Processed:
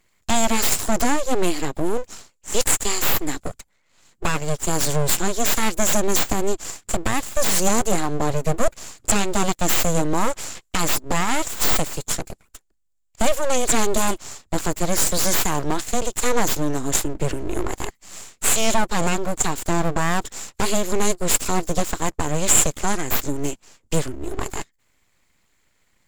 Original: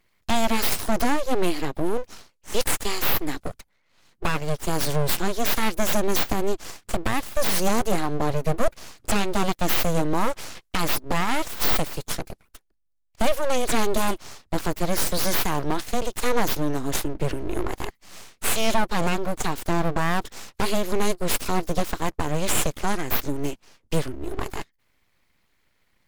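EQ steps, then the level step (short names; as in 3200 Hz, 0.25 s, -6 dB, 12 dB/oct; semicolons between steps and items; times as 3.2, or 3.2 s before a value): bell 7300 Hz +13.5 dB 0.3 oct; +2.0 dB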